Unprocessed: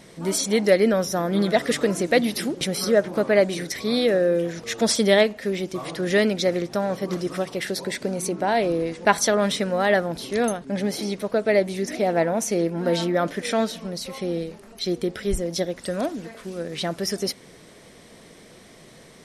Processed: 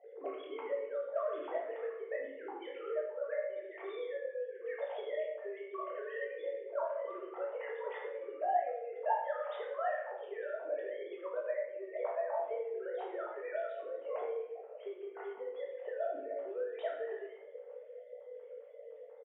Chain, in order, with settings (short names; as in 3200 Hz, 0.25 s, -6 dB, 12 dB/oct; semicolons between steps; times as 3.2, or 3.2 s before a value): sine-wave speech; low shelf 290 Hz -10 dB; compressor 6:1, threshold -34 dBFS, peak gain reduction 23.5 dB; auto-wah 450–1000 Hz, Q 4.1, up, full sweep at -32.5 dBFS; doubler 18 ms -7.5 dB; shoebox room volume 320 m³, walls mixed, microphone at 1.6 m; gain +5.5 dB